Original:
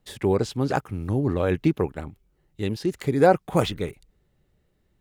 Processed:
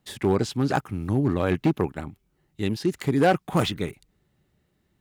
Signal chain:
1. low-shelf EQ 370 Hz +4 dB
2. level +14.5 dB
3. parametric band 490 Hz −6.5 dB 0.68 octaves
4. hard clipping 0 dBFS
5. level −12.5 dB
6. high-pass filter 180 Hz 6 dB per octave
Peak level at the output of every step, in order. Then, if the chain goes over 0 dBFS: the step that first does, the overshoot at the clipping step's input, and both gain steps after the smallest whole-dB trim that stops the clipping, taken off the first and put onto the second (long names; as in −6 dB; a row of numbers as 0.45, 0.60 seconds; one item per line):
−4.5, +10.0, +9.5, 0.0, −12.5, −9.0 dBFS
step 2, 9.5 dB
step 2 +4.5 dB, step 5 −2.5 dB